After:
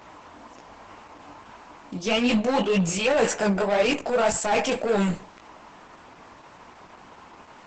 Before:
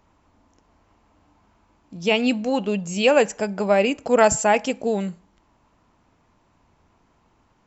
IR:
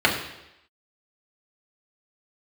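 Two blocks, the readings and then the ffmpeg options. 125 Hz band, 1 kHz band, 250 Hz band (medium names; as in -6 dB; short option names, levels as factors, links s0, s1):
+3.0 dB, -3.0 dB, -1.0 dB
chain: -filter_complex "[0:a]areverse,acompressor=threshold=0.0501:ratio=12,areverse,asplit=2[s0][s1];[s1]highpass=f=720:p=1,volume=12.6,asoftclip=type=tanh:threshold=0.112[s2];[s0][s2]amix=inputs=2:normalize=0,lowpass=f=3700:p=1,volume=0.501,flanger=delay=16:depth=6:speed=1.8,volume=2.51" -ar 48000 -c:a libopus -b:a 12k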